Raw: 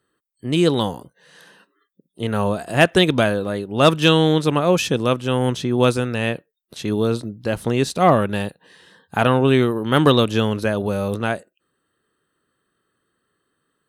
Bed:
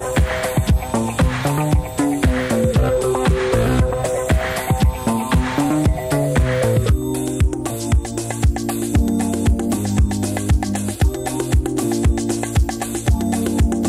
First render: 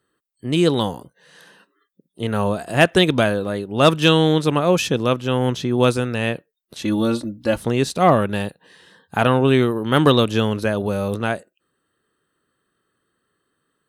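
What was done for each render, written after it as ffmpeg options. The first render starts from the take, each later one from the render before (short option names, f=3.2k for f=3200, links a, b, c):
-filter_complex "[0:a]asettb=1/sr,asplit=3[a][b][c];[a]atrim=end=4.894[d];[b]atrim=start=4.89:end=5.63,asetpts=PTS-STARTPTS,afade=t=in:d=0.004:c=qsin,afade=t=out:st=0.736:d=0.004:c=qsin,equalizer=f=8.8k:w=5:g=-10[e];[c]atrim=start=5.626[f];[d][e]acrossfade=d=0.004:c1=hsin:c2=qsin[g];[g][f]acrossfade=d=0.004:c1=qsin:c2=hsin,asettb=1/sr,asplit=3[h][i][j];[h]atrim=end=6.814[k];[i]atrim=start=6.81:end=7.57,asetpts=PTS-STARTPTS,afade=t=in:d=0.004:c=qsin,afade=t=out:st=0.756:d=0.004:c=qsin,aecho=1:1:3.5:0.82,atrim=end_sample=33516[l];[j]atrim=start=7.566[m];[k][l]acrossfade=d=0.004:c1=hsin:c2=qsin[n];[n][m]acrossfade=d=0.004:c1=qsin:c2=hsin"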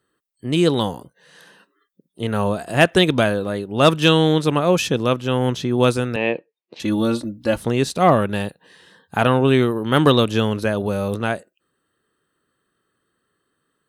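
-filter_complex "[0:a]asettb=1/sr,asplit=3[a][b][c];[a]atrim=end=6.164[d];[b]atrim=start=6.16:end=6.8,asetpts=PTS-STARTPTS,afade=t=in:d=0.004:c=qsin,afade=t=out:st=0.636:d=0.004:c=qsin,highpass=210,equalizer=f=340:t=q:w=4:g=5,equalizer=f=490:t=q:w=4:g=6,equalizer=f=890:t=q:w=4:g=5,equalizer=f=1.4k:t=q:w=4:g=-10,equalizer=f=2.4k:t=q:w=4:g=6,equalizer=f=3.5k:t=q:w=4:g=-8,lowpass=f=4.2k:w=0.5412,lowpass=f=4.2k:w=1.3066[e];[c]atrim=start=6.796[f];[d][e]acrossfade=d=0.004:c1=hsin:c2=qsin[g];[g][f]acrossfade=d=0.004:c1=qsin:c2=hsin"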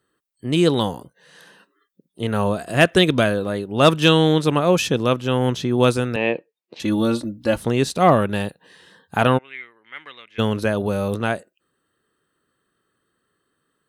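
-filter_complex "[0:a]asettb=1/sr,asplit=3[a][b][c];[a]atrim=end=2.574[d];[b]atrim=start=2.57:end=3.38,asetpts=PTS-STARTPTS,afade=t=in:d=0.004:c=qsin,afade=t=out:st=0.806:d=0.004:c=qsin,equalizer=f=850:t=o:w=0.26:g=-7[e];[c]atrim=start=3.376[f];[d][e]acrossfade=d=0.004:c1=hsin:c2=qsin[g];[g][f]acrossfade=d=0.004:c1=qsin:c2=hsin,asplit=3[h][i][j];[h]afade=t=out:st=9.37:d=0.02[k];[i]bandpass=f=2.1k:t=q:w=11,afade=t=in:st=9.37:d=0.02,afade=t=out:st=10.38:d=0.02[l];[j]afade=t=in:st=10.38:d=0.02[m];[k][l][m]amix=inputs=3:normalize=0"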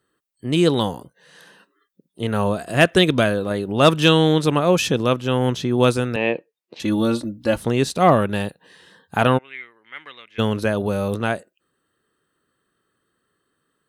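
-filter_complex "[0:a]asettb=1/sr,asplit=3[a][b][c];[a]atrim=end=3.514[d];[b]atrim=start=3.51:end=5.02,asetpts=PTS-STARTPTS,afade=t=in:d=0.004:c=qsin,afade=t=out:st=1.506:d=0.004:c=qsin,acompressor=mode=upward:threshold=-17dB:ratio=2.5:attack=3.2:release=140:knee=2.83:detection=peak[e];[c]atrim=start=5.016[f];[d][e]acrossfade=d=0.004:c1=hsin:c2=qsin[g];[g][f]acrossfade=d=0.004:c1=qsin:c2=hsin"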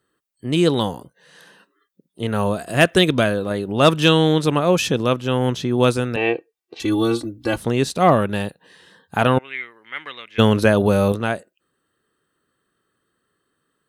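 -filter_complex "[0:a]asettb=1/sr,asplit=3[a][b][c];[a]atrim=end=2.384[d];[b]atrim=start=2.38:end=3.09,asetpts=PTS-STARTPTS,afade=t=in:d=0.004:c=qsin,afade=t=out:st=0.706:d=0.004:c=qsin,highshelf=f=8.9k:g=5[e];[c]atrim=start=3.086[f];[d][e]acrossfade=d=0.004:c1=hsin:c2=qsin[g];[g][f]acrossfade=d=0.004:c1=qsin:c2=hsin,asettb=1/sr,asplit=3[h][i][j];[h]atrim=end=6.174[k];[i]atrim=start=6.17:end=7.56,asetpts=PTS-STARTPTS,afade=t=in:d=0.004:c=qsin,afade=t=out:st=1.386:d=0.004:c=qsin,aecho=1:1:2.6:0.71,atrim=end_sample=61299[l];[j]atrim=start=7.556[m];[k][l]acrossfade=d=0.004:c1=hsin:c2=qsin[n];[n][m]acrossfade=d=0.004:c1=qsin:c2=hsin,asplit=3[o][p][q];[o]atrim=end=9.372[r];[p]atrim=start=9.368:end=11.122,asetpts=PTS-STARTPTS,volume=6dB[s];[q]atrim=start=11.118[t];[r][s]acrossfade=d=0.004:c1=hsin:c2=hsin[u];[u][t]acrossfade=d=0.004:c1=hsin:c2=hsin"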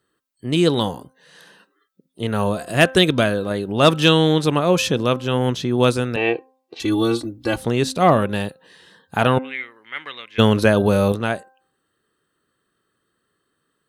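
-af "equalizer=f=4.1k:t=o:w=0.77:g=2,bandreject=f=261.5:t=h:w=4,bandreject=f=523:t=h:w=4,bandreject=f=784.5:t=h:w=4,bandreject=f=1.046k:t=h:w=4,bandreject=f=1.3075k:t=h:w=4,bandreject=f=1.569k:t=h:w=4"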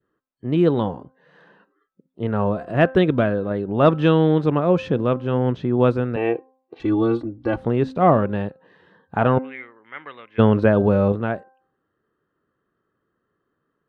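-af "lowpass=1.4k,adynamicequalizer=threshold=0.0282:dfrequency=930:dqfactor=1.3:tfrequency=930:tqfactor=1.3:attack=5:release=100:ratio=0.375:range=1.5:mode=cutabove:tftype=bell"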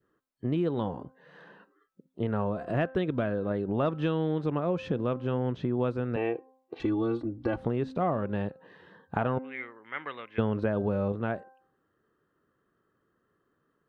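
-af "acompressor=threshold=-27dB:ratio=4"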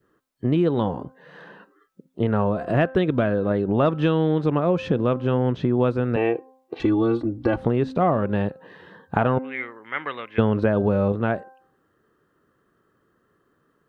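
-af "volume=8dB"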